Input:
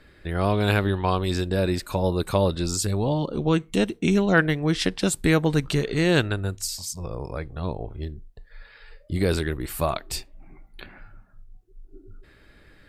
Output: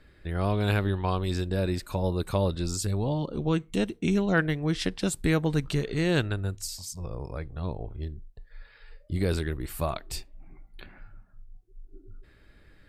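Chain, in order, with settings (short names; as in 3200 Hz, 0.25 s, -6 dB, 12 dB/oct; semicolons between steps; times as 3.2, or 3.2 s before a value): low shelf 150 Hz +5.5 dB; gain -6 dB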